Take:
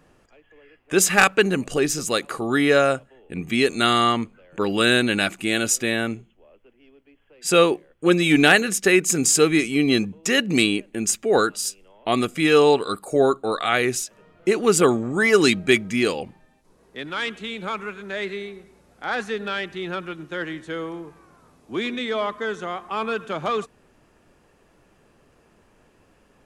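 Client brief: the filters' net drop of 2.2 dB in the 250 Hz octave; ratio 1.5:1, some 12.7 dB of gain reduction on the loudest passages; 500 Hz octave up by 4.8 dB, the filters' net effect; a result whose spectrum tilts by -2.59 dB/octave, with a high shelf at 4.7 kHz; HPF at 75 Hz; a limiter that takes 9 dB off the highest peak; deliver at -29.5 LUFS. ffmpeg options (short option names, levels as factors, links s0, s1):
-af "highpass=75,equalizer=f=250:t=o:g=-7,equalizer=f=500:t=o:g=8,highshelf=f=4700:g=8,acompressor=threshold=0.00631:ratio=1.5,volume=1.26,alimiter=limit=0.133:level=0:latency=1"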